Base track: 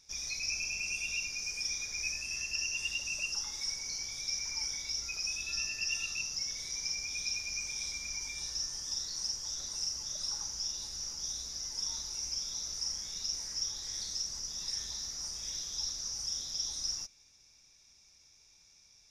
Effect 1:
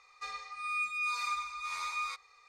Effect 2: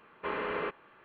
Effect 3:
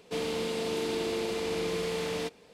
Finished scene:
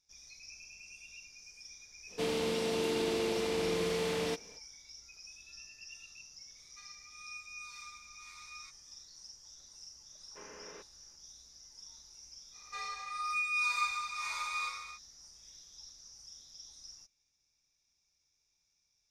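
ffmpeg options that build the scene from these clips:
-filter_complex "[1:a]asplit=2[a][b];[0:a]volume=-16dB[c];[a]highpass=1.5k[d];[2:a]equalizer=f=1.2k:w=4.1:g=-5[e];[b]aecho=1:1:30|67.5|114.4|173|246.2|337.8|452.2:0.794|0.631|0.501|0.398|0.316|0.251|0.2[f];[3:a]atrim=end=2.53,asetpts=PTS-STARTPTS,volume=-1dB,afade=t=in:d=0.05,afade=t=out:st=2.48:d=0.05,adelay=2070[g];[d]atrim=end=2.48,asetpts=PTS-STARTPTS,volume=-13dB,afade=t=in:d=0.004:c=hsin,afade=t=out:st=2.476:d=0.004:c=hsin,adelay=6550[h];[e]atrim=end=1.04,asetpts=PTS-STARTPTS,volume=-17dB,afade=t=in:d=0.004:c=hsin,afade=t=out:st=1.036:d=0.004:c=hsin,adelay=10120[i];[f]atrim=end=2.48,asetpts=PTS-STARTPTS,volume=-2.5dB,afade=t=in:d=0.05,afade=t=out:st=2.43:d=0.05,adelay=12510[j];[c][g][h][i][j]amix=inputs=5:normalize=0"

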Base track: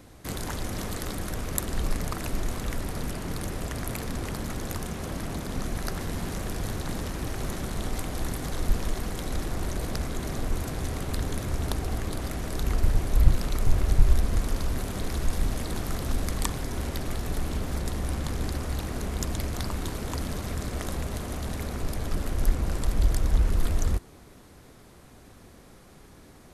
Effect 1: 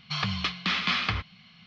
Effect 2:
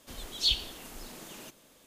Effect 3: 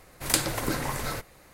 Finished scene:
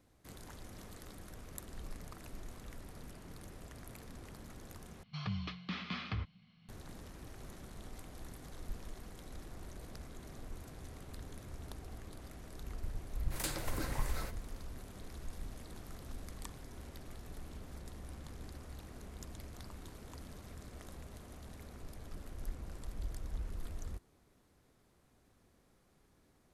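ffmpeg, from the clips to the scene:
-filter_complex "[0:a]volume=-18.5dB[a];[1:a]tiltshelf=f=670:g=6.5[b];[3:a]asoftclip=type=hard:threshold=-19.5dB[c];[a]asplit=2[d][e];[d]atrim=end=5.034[f];[b]atrim=end=1.66,asetpts=PTS-STARTPTS,volume=-12dB[g];[e]atrim=start=6.686[h];[c]atrim=end=1.53,asetpts=PTS-STARTPTS,volume=-11.5dB,afade=t=in:d=0.004:c=hsin,afade=t=out:st=1.526:d=0.004:c=hsin,adelay=13100[i];[f][g]acrossfade=d=0.004:c1=hsin:c2=hsin[j];[j][h]acrossfade=d=0.004:c1=hsin:c2=hsin[k];[k][i]amix=inputs=2:normalize=0"

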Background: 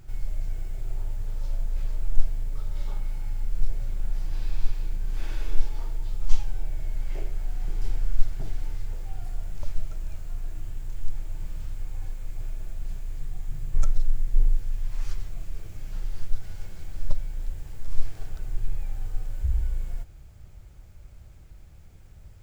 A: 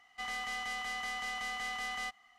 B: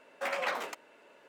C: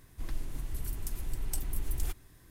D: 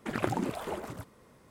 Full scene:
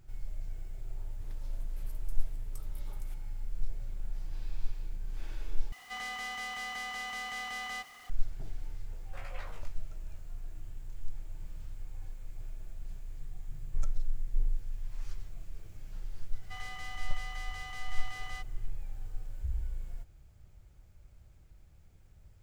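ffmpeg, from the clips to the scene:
-filter_complex "[1:a]asplit=2[a][b];[0:a]volume=-9.5dB[c];[3:a]acompressor=threshold=-30dB:ratio=6:attack=3.2:release=140:knee=1:detection=peak[d];[a]aeval=exprs='val(0)+0.5*0.00447*sgn(val(0))':c=same[e];[2:a]asplit=2[f][g];[g]adelay=19,volume=-4dB[h];[f][h]amix=inputs=2:normalize=0[i];[b]highpass=350[j];[c]asplit=2[k][l];[k]atrim=end=5.724[m];[e]atrim=end=2.38,asetpts=PTS-STARTPTS,volume=-2dB[n];[l]atrim=start=8.096[o];[d]atrim=end=2.5,asetpts=PTS-STARTPTS,volume=-14dB,afade=t=in:d=0.004:c=hsin,afade=t=out:st=2.496:d=0.004:c=hsin,adelay=1020[p];[i]atrim=end=1.28,asetpts=PTS-STARTPTS,volume=-17dB,afade=t=in:d=0.004:c=hsin,afade=t=out:st=1.276:d=0.004:c=hsin,adelay=8920[q];[j]atrim=end=2.38,asetpts=PTS-STARTPTS,volume=-6dB,afade=t=in:d=0.004:c=hsin,afade=t=out:st=2.376:d=0.004:c=hsin,adelay=16320[r];[m][n]acrossfade=d=0.004:c1=hsin:c2=hsin[s];[s][o]acrossfade=d=0.004:c1=hsin:c2=hsin[t];[t][p][q][r]amix=inputs=4:normalize=0"

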